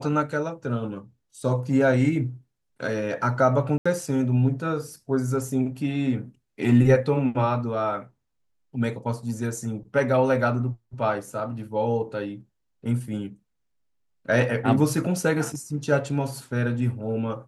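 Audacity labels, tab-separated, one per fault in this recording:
3.780000	3.850000	gap 75 ms

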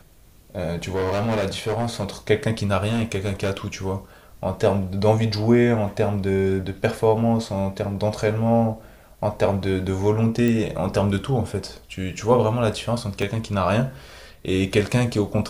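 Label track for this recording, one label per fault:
0.740000	2.050000	clipped -19.5 dBFS
2.880000	3.670000	clipped -18.5 dBFS
6.230000	6.230000	gap 2.6 ms
10.480000	10.480000	pop
13.220000	13.220000	gap 3.7 ms

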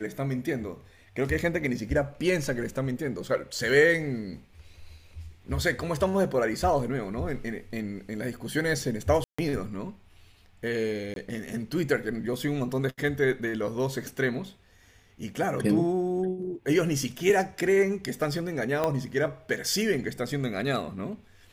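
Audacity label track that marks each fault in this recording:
9.240000	9.380000	gap 0.145 s
11.140000	11.160000	gap 22 ms
18.840000	18.840000	pop -13 dBFS

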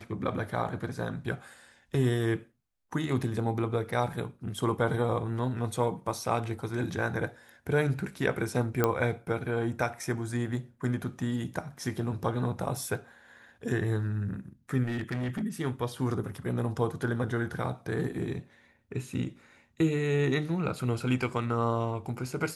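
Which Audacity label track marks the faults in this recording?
8.840000	8.840000	pop -11 dBFS
14.830000	15.430000	clipped -28.5 dBFS

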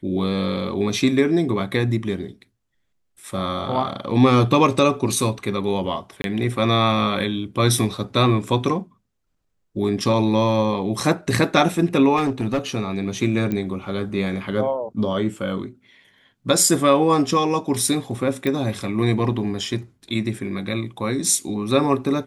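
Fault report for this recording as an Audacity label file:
6.220000	6.240000	gap 22 ms
12.160000	12.590000	clipped -16.5 dBFS
13.520000	13.520000	pop -13 dBFS
18.470000	18.470000	pop

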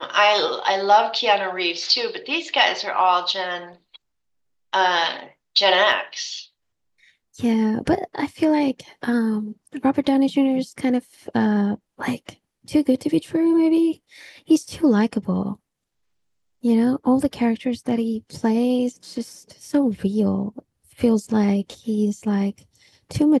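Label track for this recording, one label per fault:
5.920000	5.920000	gap 3.2 ms

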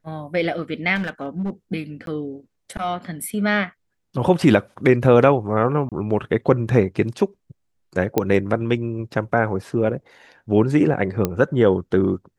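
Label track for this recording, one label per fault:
0.950000	1.500000	clipped -20.5 dBFS
2.060000	2.070000	gap 12 ms
5.890000	5.920000	gap 27 ms
8.180000	8.180000	pop -5 dBFS
11.250000	11.250000	pop -7 dBFS

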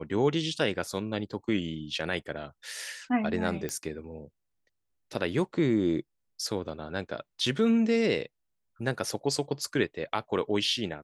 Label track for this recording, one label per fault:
3.690000	3.690000	pop -17 dBFS

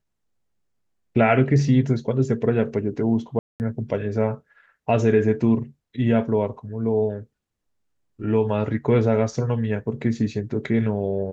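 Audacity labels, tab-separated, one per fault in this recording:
3.390000	3.600000	gap 0.209 s

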